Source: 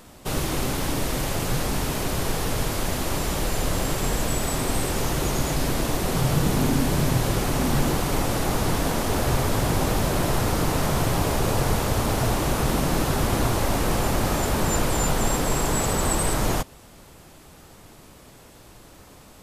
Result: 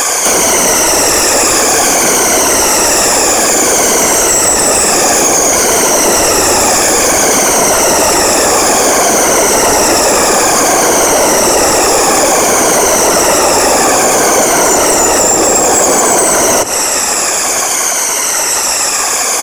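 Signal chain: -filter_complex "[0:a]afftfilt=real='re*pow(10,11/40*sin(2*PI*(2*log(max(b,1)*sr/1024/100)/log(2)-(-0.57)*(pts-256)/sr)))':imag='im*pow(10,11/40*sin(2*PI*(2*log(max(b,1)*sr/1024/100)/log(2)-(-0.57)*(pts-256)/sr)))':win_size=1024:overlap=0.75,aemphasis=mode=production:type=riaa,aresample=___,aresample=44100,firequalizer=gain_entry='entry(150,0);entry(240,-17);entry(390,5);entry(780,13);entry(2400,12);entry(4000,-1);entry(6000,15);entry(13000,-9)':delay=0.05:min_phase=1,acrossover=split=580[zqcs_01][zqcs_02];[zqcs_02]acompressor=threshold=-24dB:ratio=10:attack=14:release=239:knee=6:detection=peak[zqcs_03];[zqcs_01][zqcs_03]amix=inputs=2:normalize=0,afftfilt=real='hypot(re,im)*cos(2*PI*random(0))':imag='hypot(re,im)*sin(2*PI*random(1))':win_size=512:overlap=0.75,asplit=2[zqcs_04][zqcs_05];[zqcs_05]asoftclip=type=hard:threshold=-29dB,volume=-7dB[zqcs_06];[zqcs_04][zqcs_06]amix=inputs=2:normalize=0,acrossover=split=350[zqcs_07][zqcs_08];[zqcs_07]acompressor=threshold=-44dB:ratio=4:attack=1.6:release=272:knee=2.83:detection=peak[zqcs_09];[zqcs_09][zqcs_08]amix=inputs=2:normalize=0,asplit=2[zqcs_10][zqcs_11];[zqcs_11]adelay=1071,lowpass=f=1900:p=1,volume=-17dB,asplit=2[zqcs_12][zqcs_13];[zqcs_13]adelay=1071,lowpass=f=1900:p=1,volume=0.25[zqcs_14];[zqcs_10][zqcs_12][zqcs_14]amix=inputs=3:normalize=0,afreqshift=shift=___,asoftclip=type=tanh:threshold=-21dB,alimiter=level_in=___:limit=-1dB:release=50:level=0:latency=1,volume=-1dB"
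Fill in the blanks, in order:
32000, -120, 26.5dB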